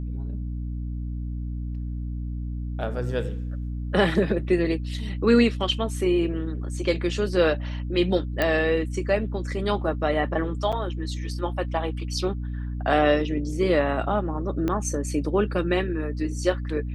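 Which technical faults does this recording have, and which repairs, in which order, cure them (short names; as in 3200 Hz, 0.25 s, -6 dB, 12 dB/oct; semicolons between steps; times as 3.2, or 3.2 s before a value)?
hum 60 Hz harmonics 5 -30 dBFS
8.42 pop -10 dBFS
10.72–10.73 gap 6.3 ms
14.68 pop -14 dBFS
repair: de-click; de-hum 60 Hz, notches 5; interpolate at 10.72, 6.3 ms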